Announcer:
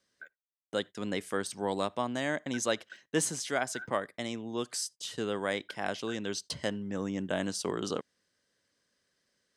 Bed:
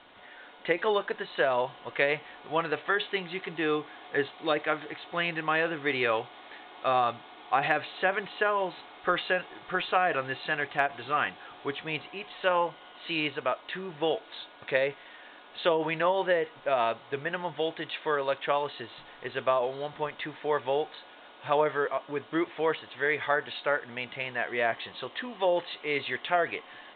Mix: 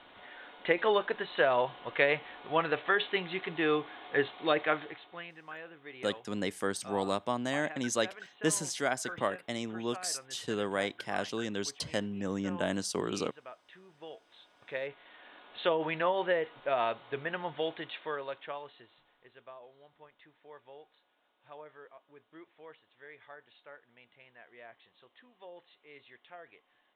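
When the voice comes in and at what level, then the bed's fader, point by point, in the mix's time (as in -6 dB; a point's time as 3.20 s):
5.30 s, 0.0 dB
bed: 4.76 s -0.5 dB
5.34 s -19 dB
14.09 s -19 dB
15.38 s -3.5 dB
17.71 s -3.5 dB
19.42 s -24 dB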